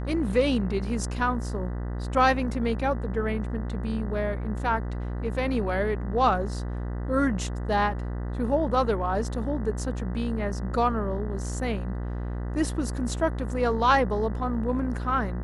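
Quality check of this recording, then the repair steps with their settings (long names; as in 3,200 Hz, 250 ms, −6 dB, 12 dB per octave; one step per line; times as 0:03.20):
mains buzz 60 Hz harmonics 33 −31 dBFS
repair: hum removal 60 Hz, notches 33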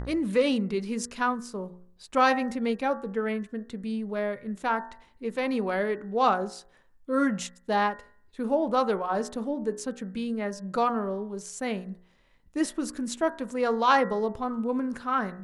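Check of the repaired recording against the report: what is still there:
none of them is left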